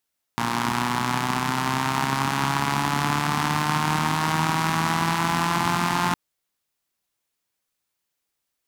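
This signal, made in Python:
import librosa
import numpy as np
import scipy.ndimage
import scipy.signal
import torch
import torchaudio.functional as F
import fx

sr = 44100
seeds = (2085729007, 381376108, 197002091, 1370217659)

y = fx.engine_four_rev(sr, seeds[0], length_s=5.76, rpm=3500, resonances_hz=(160.0, 230.0, 920.0), end_rpm=5300)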